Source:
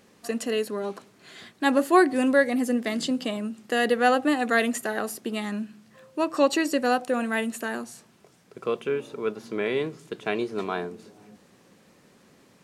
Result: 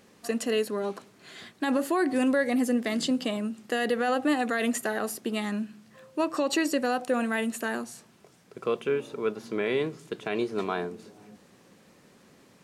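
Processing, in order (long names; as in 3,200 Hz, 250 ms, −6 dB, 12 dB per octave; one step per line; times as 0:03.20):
brickwall limiter −16.5 dBFS, peak gain reduction 10.5 dB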